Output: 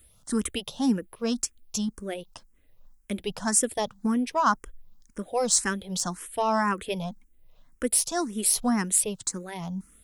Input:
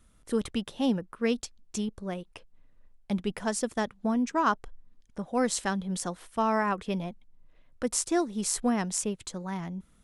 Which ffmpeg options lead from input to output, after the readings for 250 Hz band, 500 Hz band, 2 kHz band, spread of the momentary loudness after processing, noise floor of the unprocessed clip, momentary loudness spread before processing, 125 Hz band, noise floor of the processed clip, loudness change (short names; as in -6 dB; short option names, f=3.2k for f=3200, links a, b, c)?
+1.0 dB, +0.5 dB, +2.0 dB, 13 LU, -61 dBFS, 10 LU, 0.0 dB, -60 dBFS, +3.5 dB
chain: -filter_complex "[0:a]aemphasis=mode=production:type=50fm,asplit=2[a][b];[b]asoftclip=type=tanh:threshold=-18dB,volume=-3dB[c];[a][c]amix=inputs=2:normalize=0,asplit=2[d][e];[e]afreqshift=1.9[f];[d][f]amix=inputs=2:normalize=1"